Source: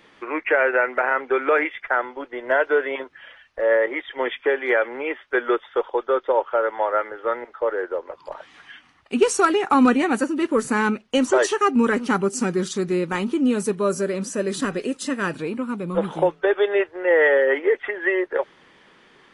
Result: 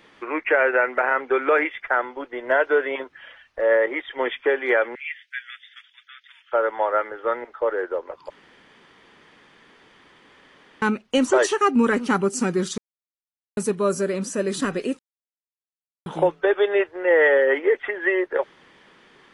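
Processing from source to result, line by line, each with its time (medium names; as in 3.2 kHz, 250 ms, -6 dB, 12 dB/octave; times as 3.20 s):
4.95–6.52 s: steep high-pass 1.8 kHz 48 dB/octave
8.30–10.82 s: room tone
12.78–13.57 s: mute
14.99–16.06 s: mute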